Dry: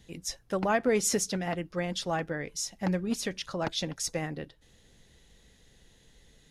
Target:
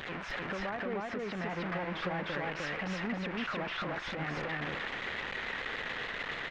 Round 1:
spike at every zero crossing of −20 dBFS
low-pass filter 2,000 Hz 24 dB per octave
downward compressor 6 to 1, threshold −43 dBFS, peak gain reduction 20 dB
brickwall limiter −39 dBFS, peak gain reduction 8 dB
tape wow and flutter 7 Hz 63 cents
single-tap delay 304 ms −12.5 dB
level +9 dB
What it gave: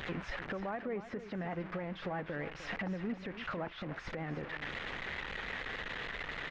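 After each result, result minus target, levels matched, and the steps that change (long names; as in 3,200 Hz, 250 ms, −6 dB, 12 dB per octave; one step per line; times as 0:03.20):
echo-to-direct −11.5 dB; spike at every zero crossing: distortion −9 dB
change: single-tap delay 304 ms −1 dB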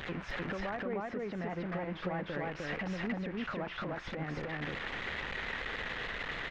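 spike at every zero crossing: distortion −9 dB
change: spike at every zero crossing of −9.5 dBFS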